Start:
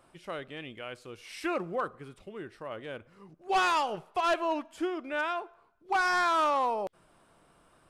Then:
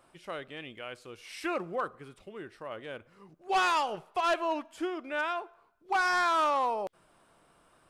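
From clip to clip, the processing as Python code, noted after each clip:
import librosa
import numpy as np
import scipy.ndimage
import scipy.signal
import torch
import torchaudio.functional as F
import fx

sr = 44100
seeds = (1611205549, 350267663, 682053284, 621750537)

y = fx.low_shelf(x, sr, hz=320.0, db=-4.0)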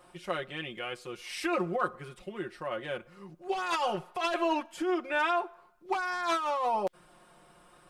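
y = x + 0.86 * np.pad(x, (int(5.6 * sr / 1000.0), 0))[:len(x)]
y = fx.over_compress(y, sr, threshold_db=-29.0, ratio=-1.0)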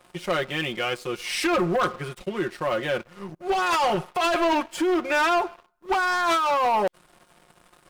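y = fx.leveller(x, sr, passes=3)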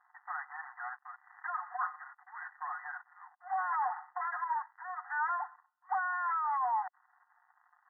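y = fx.dead_time(x, sr, dead_ms=0.19)
y = fx.brickwall_bandpass(y, sr, low_hz=720.0, high_hz=2000.0)
y = y * 10.0 ** (-6.5 / 20.0)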